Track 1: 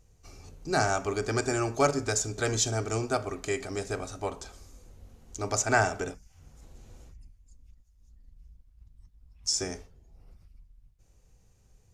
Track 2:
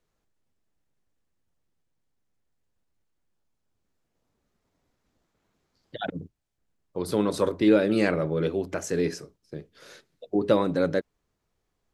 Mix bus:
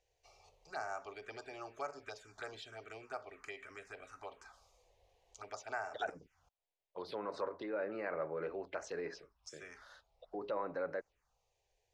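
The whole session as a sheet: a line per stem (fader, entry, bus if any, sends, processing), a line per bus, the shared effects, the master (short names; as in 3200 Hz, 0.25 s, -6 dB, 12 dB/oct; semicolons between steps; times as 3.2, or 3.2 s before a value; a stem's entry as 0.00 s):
-2.0 dB, 0.00 s, muted 6.49–8.47, no send, compressor 2.5:1, threshold -36 dBFS, peak gain reduction 12 dB
-2.5 dB, 0.00 s, no send, treble ducked by the level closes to 2600 Hz, closed at -18.5 dBFS; limiter -19 dBFS, peak gain reduction 10.5 dB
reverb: off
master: three-band isolator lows -22 dB, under 540 Hz, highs -18 dB, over 4200 Hz; envelope phaser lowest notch 210 Hz, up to 3400 Hz, full sweep at -37.5 dBFS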